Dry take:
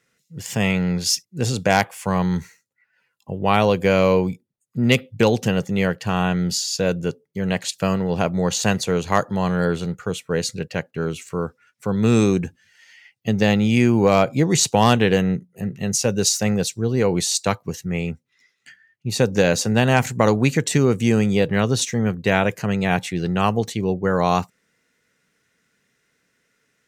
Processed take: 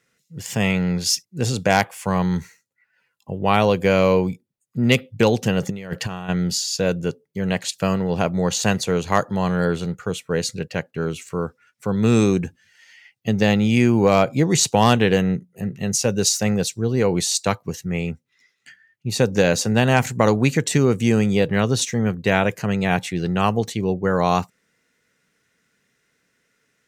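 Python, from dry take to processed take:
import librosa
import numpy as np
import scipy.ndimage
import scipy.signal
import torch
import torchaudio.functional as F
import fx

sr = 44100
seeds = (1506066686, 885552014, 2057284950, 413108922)

y = fx.over_compress(x, sr, threshold_db=-26.0, ratio=-0.5, at=(5.61, 6.28), fade=0.02)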